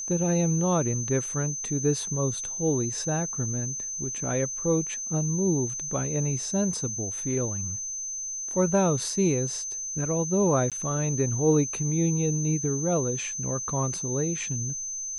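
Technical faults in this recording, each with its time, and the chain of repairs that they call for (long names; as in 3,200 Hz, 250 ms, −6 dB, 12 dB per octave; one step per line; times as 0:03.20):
whistle 6,200 Hz −31 dBFS
0:10.70–0:10.72: drop-out 17 ms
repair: notch filter 6,200 Hz, Q 30
repair the gap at 0:10.70, 17 ms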